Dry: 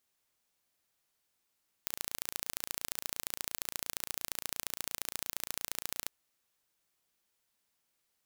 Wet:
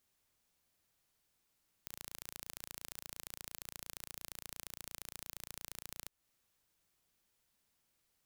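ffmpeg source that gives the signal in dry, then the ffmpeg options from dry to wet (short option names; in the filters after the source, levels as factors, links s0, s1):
-f lavfi -i "aevalsrc='0.473*eq(mod(n,1542),0)*(0.5+0.5*eq(mod(n,3084),0))':d=4.23:s=44100"
-af "lowshelf=f=190:g=9.5,alimiter=limit=0.15:level=0:latency=1:release=231"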